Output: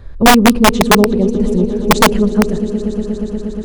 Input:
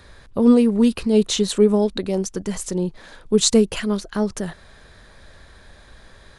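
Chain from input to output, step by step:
spectral tilt −3.5 dB per octave
feedback delay network reverb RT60 0.77 s, low-frequency decay 0.9×, high-frequency decay 0.8×, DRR 18 dB
phase-vocoder stretch with locked phases 0.57×
on a send: echo that builds up and dies away 119 ms, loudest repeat 5, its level −16 dB
on the sum: wrap-around overflow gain 2.5 dB
level +1.5 dB

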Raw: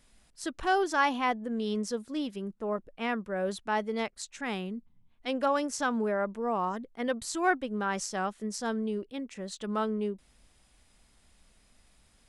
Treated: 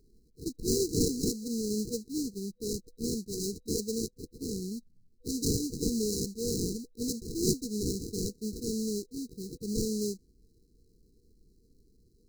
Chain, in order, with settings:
sample-rate reduction 1,300 Hz, jitter 20%
dynamic equaliser 6,700 Hz, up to +8 dB, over −55 dBFS, Q 1.5
brick-wall band-stop 490–3,900 Hz

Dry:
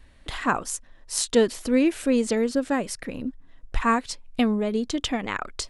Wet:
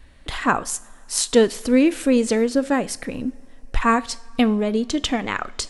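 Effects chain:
coupled-rooms reverb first 0.46 s, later 3.3 s, from −18 dB, DRR 16 dB
level +4 dB

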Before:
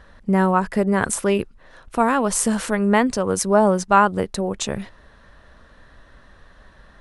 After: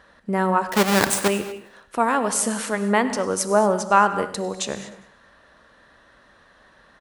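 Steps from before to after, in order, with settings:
0:00.68–0:01.28: each half-wave held at its own peak
high-pass filter 300 Hz 6 dB per octave
repeating echo 101 ms, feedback 49%, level −20 dB
reverb whose tail is shaped and stops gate 260 ms flat, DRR 10.5 dB
level −1 dB

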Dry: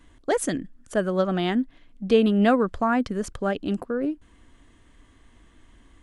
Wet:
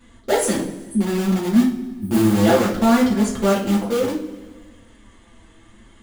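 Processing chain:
0:01.61–0:02.66: sub-harmonics by changed cycles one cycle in 2, muted
flanger 0.64 Hz, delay 3.9 ms, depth 2.6 ms, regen +49%
on a send: delay with a low-pass on its return 90 ms, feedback 65%, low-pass 440 Hz, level −12 dB
0:00.74–0:02.35: on the sum: time-frequency box erased 390–8,200 Hz
in parallel at −7.5 dB: wrap-around overflow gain 25 dB
on the sum: coupled-rooms reverb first 0.36 s, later 1.6 s, from −18 dB, DRR −6 dB
level +1.5 dB

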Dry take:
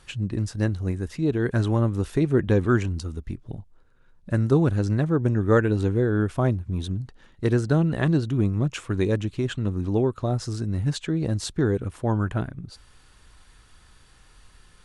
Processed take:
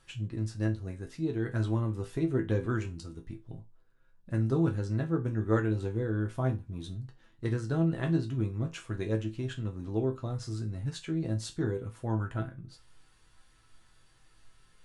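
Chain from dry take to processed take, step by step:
resonators tuned to a chord A2 minor, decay 0.23 s
level +3 dB

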